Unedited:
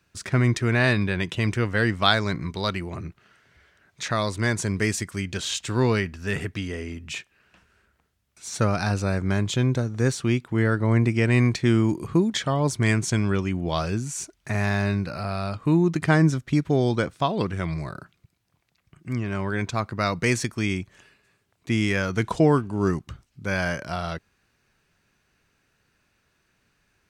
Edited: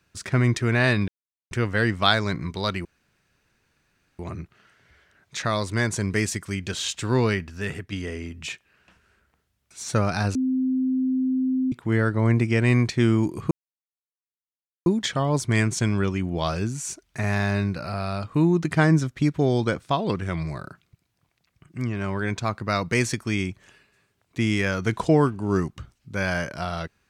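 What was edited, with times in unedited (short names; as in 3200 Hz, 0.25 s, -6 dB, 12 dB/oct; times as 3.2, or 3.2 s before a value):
1.08–1.51 mute
2.85 insert room tone 1.34 s
6.07–6.58 fade out linear, to -6.5 dB
9.01–10.38 bleep 259 Hz -20 dBFS
12.17 insert silence 1.35 s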